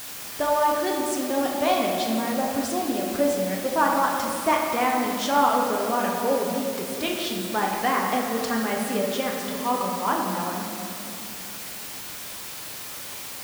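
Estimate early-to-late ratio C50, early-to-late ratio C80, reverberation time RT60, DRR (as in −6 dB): 1.5 dB, 3.0 dB, 2.8 s, −1.5 dB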